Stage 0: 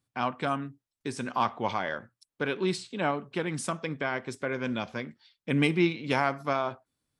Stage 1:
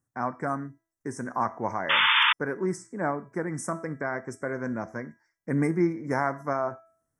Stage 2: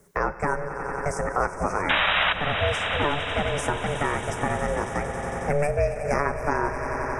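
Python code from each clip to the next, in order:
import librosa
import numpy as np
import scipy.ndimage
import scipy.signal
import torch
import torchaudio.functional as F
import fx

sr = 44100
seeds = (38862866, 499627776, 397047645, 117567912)

y1 = scipy.signal.sosfilt(scipy.signal.ellip(3, 1.0, 40, [1900.0, 5800.0], 'bandstop', fs=sr, output='sos'), x)
y1 = fx.comb_fb(y1, sr, f0_hz=330.0, decay_s=0.51, harmonics='all', damping=0.0, mix_pct=60)
y1 = fx.spec_paint(y1, sr, seeds[0], shape='noise', start_s=1.89, length_s=0.44, low_hz=860.0, high_hz=3600.0, level_db=-29.0)
y1 = y1 * 10.0 ** (8.0 / 20.0)
y2 = y1 * np.sin(2.0 * np.pi * 290.0 * np.arange(len(y1)) / sr)
y2 = fx.echo_swell(y2, sr, ms=91, loudest=5, wet_db=-16)
y2 = fx.band_squash(y2, sr, depth_pct=70)
y2 = y2 * 10.0 ** (5.5 / 20.0)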